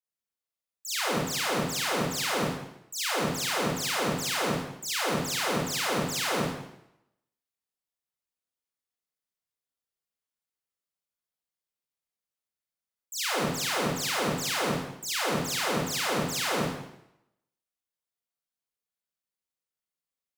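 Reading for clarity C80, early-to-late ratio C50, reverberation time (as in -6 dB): 2.5 dB, -1.0 dB, 0.80 s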